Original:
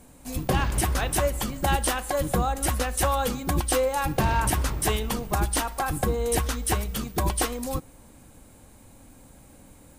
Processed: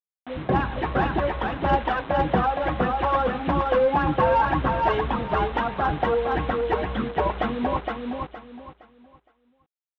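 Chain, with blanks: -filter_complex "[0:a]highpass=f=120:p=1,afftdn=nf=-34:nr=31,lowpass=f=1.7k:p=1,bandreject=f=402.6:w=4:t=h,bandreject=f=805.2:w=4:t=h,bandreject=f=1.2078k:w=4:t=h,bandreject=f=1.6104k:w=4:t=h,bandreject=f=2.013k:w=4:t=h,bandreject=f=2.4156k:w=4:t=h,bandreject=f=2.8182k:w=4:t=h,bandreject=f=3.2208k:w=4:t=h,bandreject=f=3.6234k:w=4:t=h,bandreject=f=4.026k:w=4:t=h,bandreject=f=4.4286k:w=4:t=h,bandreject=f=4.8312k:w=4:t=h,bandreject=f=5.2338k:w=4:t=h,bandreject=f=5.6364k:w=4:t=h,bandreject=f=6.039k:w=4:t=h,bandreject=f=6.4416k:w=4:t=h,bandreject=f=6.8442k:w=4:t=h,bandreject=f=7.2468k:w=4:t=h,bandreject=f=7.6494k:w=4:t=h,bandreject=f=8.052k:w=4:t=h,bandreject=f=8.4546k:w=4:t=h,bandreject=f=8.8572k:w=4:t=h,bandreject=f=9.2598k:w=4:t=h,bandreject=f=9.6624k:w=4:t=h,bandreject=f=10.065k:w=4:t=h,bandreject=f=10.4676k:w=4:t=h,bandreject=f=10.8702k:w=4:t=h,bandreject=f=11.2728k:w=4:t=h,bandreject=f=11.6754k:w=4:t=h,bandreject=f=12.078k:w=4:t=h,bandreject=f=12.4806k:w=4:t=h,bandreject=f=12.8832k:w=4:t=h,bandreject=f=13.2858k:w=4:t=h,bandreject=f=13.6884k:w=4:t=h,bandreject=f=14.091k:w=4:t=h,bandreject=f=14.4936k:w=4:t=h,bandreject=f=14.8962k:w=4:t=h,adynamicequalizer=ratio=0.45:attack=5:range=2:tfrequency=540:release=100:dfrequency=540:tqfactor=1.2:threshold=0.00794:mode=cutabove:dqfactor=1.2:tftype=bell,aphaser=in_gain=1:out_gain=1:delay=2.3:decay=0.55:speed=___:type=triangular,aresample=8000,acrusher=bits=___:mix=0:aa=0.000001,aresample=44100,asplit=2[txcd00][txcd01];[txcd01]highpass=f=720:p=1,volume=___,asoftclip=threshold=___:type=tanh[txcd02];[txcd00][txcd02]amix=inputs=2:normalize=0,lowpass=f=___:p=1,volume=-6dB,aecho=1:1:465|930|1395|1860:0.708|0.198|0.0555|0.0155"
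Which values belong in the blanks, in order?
1.7, 6, 17dB, -9.5dB, 1k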